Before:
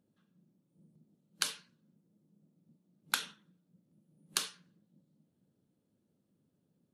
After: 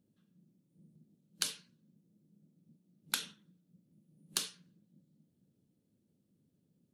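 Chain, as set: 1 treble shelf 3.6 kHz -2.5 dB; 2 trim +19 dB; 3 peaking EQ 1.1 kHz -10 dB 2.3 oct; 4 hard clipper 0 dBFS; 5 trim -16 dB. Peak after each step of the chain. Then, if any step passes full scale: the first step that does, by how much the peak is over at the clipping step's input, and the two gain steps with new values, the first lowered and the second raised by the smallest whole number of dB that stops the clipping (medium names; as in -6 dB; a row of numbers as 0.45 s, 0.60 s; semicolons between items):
-12.0 dBFS, +7.0 dBFS, +5.5 dBFS, 0.0 dBFS, -16.0 dBFS; step 2, 5.5 dB; step 2 +13 dB, step 5 -10 dB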